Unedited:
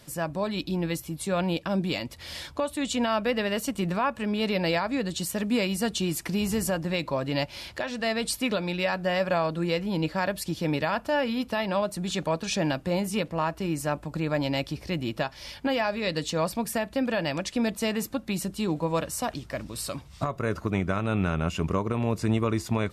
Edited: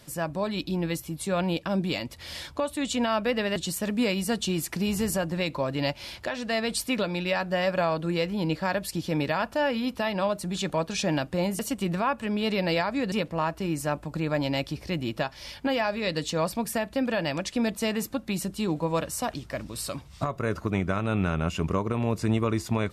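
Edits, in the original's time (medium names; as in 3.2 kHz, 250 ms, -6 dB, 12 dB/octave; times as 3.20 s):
3.56–5.09 s: move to 13.12 s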